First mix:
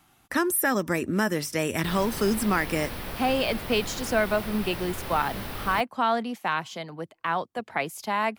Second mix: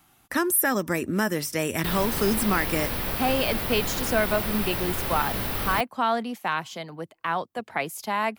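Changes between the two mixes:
background +5.0 dB
master: add high-shelf EQ 12,000 Hz +8.5 dB

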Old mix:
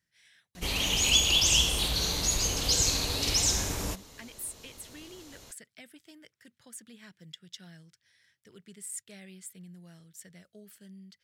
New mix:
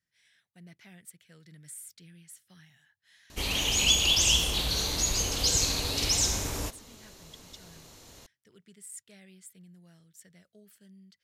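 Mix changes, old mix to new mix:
speech −5.0 dB
background: entry +2.75 s

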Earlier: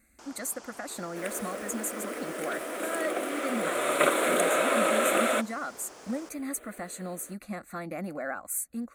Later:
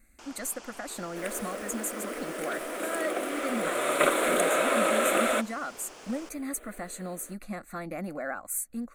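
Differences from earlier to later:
first sound: add parametric band 2,700 Hz +7.5 dB 0.82 octaves
master: remove high-pass filter 57 Hz

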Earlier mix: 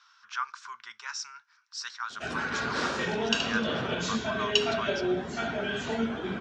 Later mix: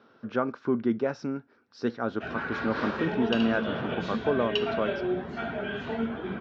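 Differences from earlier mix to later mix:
speech: remove elliptic high-pass filter 990 Hz, stop band 40 dB
master: add high-frequency loss of the air 310 metres

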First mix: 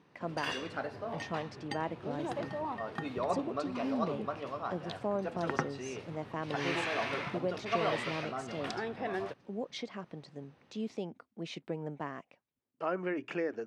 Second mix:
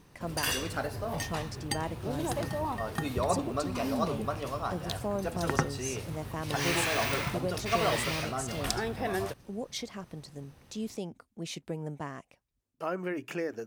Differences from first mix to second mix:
background +3.5 dB
master: remove band-pass filter 180–3,300 Hz

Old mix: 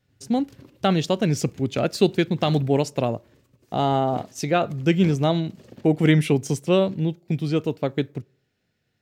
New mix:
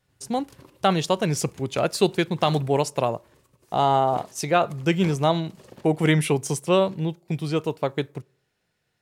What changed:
background: send +6.0 dB
master: add graphic EQ with 15 bands 100 Hz −6 dB, 250 Hz −7 dB, 1,000 Hz +7 dB, 10,000 Hz +9 dB

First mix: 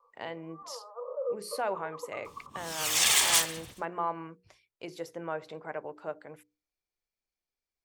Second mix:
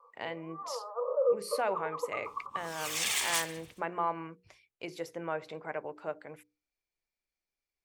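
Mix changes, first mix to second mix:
first sound +6.0 dB
second sound −8.5 dB
master: add parametric band 2,300 Hz +4.5 dB 0.54 octaves

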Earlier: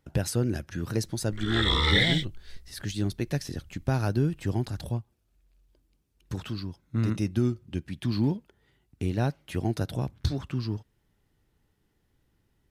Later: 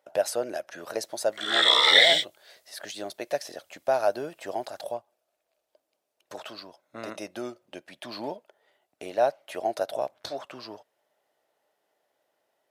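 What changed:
background: add high-shelf EQ 2,200 Hz +10.5 dB
master: add high-pass with resonance 620 Hz, resonance Q 5.9

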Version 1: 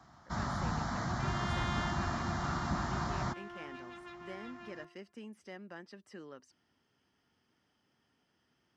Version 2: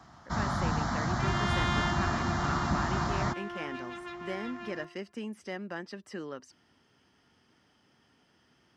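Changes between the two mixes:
speech +9.5 dB
first sound +5.0 dB
second sound +7.5 dB

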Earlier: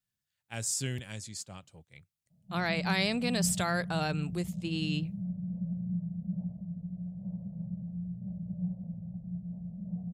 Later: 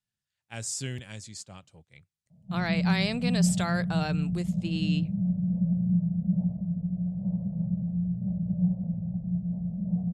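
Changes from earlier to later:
speech: add low-pass filter 9,300 Hz 12 dB per octave
background +9.0 dB

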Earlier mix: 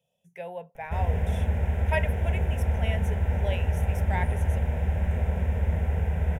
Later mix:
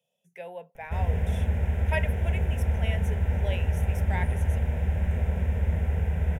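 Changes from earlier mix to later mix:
speech: add high-pass filter 220 Hz
master: add parametric band 800 Hz −3.5 dB 1.4 octaves

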